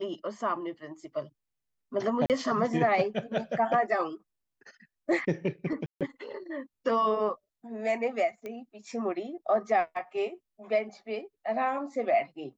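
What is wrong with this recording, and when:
2.26–2.30 s: dropout 38 ms
5.86–6.01 s: dropout 147 ms
8.46 s: pop -26 dBFS

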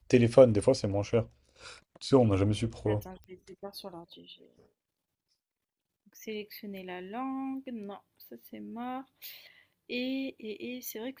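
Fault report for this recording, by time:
3.24 s: pop -34 dBFS

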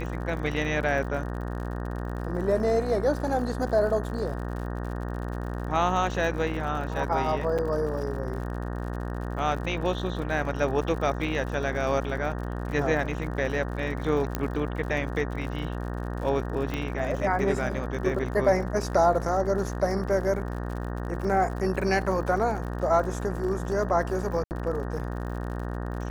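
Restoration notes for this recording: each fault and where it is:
buzz 60 Hz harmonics 31 -32 dBFS
crackle 71 per s -36 dBFS
7.58–7.59 s: dropout 6.5 ms
14.35 s: pop -12 dBFS
16.74 s: pop -17 dBFS
24.44–24.51 s: dropout 69 ms

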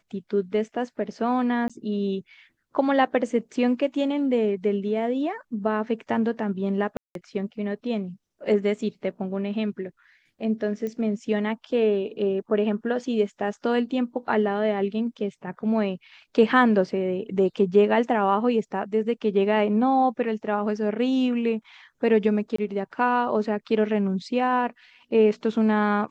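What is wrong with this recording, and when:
1.68–1.70 s: dropout 16 ms
6.97–7.15 s: dropout 182 ms
10.87 s: pop -21 dBFS
22.56–22.58 s: dropout 24 ms

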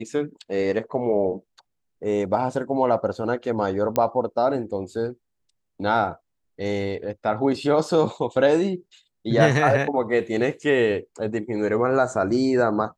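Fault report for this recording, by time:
3.96 s: pop -8 dBFS

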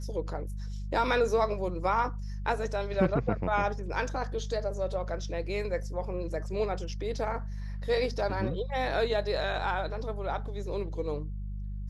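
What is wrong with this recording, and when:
hum 50 Hz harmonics 4 -36 dBFS

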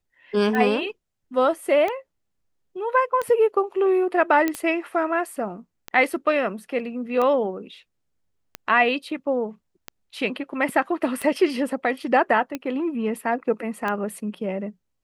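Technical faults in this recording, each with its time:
tick 45 rpm -14 dBFS
4.48 s: pop -10 dBFS

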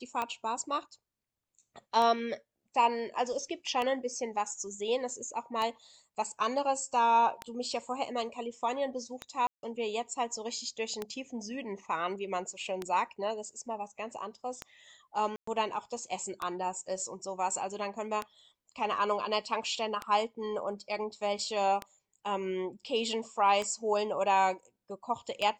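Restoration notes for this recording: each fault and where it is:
tick 33 1/3 rpm -19 dBFS
9.47–9.63 s: dropout 161 ms
15.36–15.47 s: dropout 114 ms

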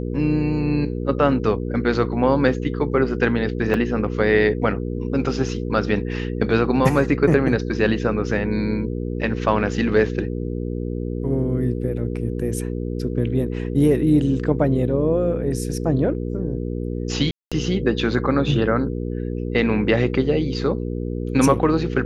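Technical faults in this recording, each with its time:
hum 60 Hz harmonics 8 -26 dBFS
3.74 s: dropout 2.4 ms
17.31–17.52 s: dropout 206 ms

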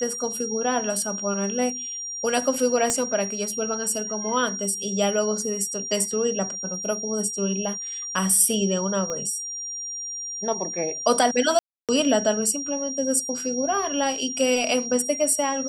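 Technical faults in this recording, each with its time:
whine 5.7 kHz -30 dBFS
2.90 s: pop -9 dBFS
9.10 s: pop -17 dBFS
11.59–11.89 s: dropout 297 ms

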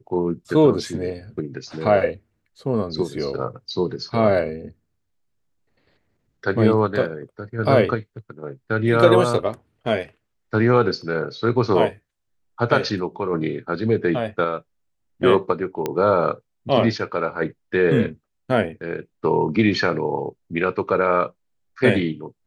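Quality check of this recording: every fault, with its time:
15.86 s: pop -10 dBFS

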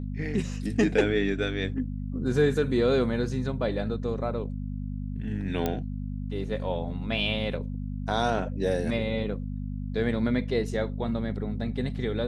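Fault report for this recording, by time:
hum 50 Hz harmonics 5 -33 dBFS
5.66 s: pop -13 dBFS

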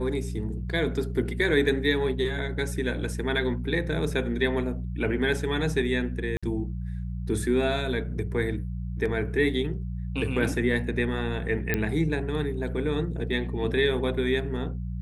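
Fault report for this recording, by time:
hum 60 Hz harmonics 3 -32 dBFS
6.37–6.43 s: dropout 56 ms
11.74 s: pop -11 dBFS

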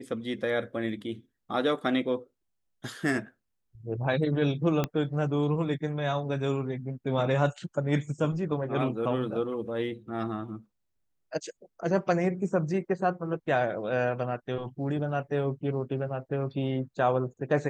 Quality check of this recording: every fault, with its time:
4.84 s: pop -14 dBFS

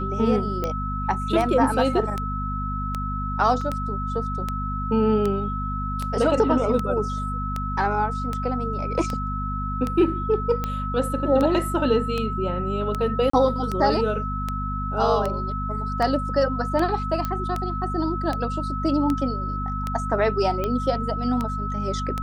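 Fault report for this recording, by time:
hum 50 Hz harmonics 5 -29 dBFS
tick 78 rpm -13 dBFS
whine 1.3 kHz -29 dBFS
3.61 s: dropout 3.6 ms
13.30–13.33 s: dropout 34 ms
17.25 s: pop -13 dBFS

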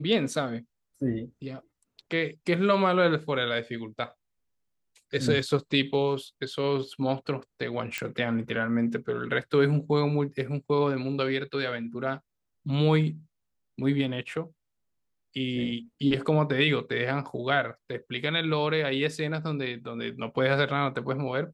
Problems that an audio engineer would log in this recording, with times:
7.98 s: pop -15 dBFS

